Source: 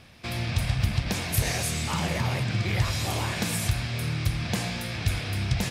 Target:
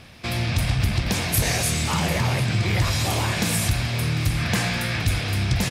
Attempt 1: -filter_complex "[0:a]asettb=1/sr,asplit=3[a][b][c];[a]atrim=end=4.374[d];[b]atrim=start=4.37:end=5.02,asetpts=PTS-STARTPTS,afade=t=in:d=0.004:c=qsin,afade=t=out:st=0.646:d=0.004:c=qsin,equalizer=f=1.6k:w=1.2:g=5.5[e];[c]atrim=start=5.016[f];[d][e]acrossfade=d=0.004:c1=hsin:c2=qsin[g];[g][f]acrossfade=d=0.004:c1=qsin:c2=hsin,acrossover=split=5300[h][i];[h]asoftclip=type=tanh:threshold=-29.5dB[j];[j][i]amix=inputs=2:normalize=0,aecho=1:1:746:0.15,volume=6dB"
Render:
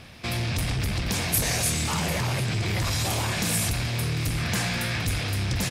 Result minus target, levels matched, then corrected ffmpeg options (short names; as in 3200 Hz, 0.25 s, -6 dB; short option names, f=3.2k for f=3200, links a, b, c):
soft clip: distortion +8 dB
-filter_complex "[0:a]asettb=1/sr,asplit=3[a][b][c];[a]atrim=end=4.374[d];[b]atrim=start=4.37:end=5.02,asetpts=PTS-STARTPTS,afade=t=in:d=0.004:c=qsin,afade=t=out:st=0.646:d=0.004:c=qsin,equalizer=f=1.6k:w=1.2:g=5.5[e];[c]atrim=start=5.016[f];[d][e]acrossfade=d=0.004:c1=hsin:c2=qsin[g];[g][f]acrossfade=d=0.004:c1=qsin:c2=hsin,acrossover=split=5300[h][i];[h]asoftclip=type=tanh:threshold=-19.5dB[j];[j][i]amix=inputs=2:normalize=0,aecho=1:1:746:0.15,volume=6dB"